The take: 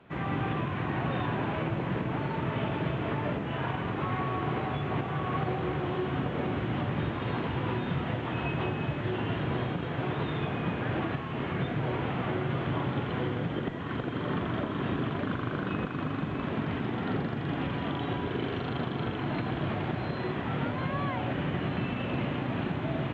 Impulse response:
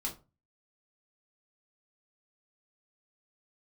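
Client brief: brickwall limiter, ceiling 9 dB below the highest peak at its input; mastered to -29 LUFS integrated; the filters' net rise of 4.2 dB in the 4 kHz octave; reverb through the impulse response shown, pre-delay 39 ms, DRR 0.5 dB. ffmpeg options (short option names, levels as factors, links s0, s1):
-filter_complex "[0:a]equalizer=f=4000:t=o:g=6,alimiter=level_in=1.58:limit=0.0631:level=0:latency=1,volume=0.631,asplit=2[s0][s1];[1:a]atrim=start_sample=2205,adelay=39[s2];[s1][s2]afir=irnorm=-1:irlink=0,volume=0.841[s3];[s0][s3]amix=inputs=2:normalize=0,volume=1.58"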